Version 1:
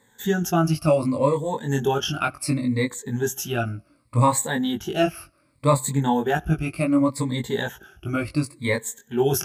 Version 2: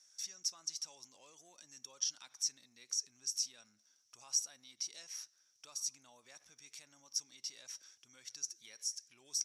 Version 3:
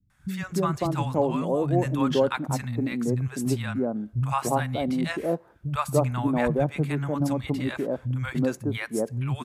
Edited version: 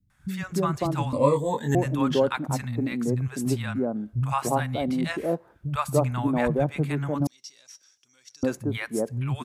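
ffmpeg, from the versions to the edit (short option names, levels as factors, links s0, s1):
-filter_complex "[2:a]asplit=3[s0][s1][s2];[s0]atrim=end=1.132[s3];[0:a]atrim=start=1.128:end=1.752[s4];[s1]atrim=start=1.748:end=7.272[s5];[1:a]atrim=start=7.268:end=8.432[s6];[s2]atrim=start=8.428[s7];[s3][s4]acrossfade=d=0.004:c1=hsin:c2=hsin[s8];[s8][s5]acrossfade=d=0.004:c1=hsin:c2=hsin[s9];[s9][s6]acrossfade=d=0.004:c1=hsin:c2=hsin[s10];[s10][s7]acrossfade=d=0.004:c1=hsin:c2=hsin"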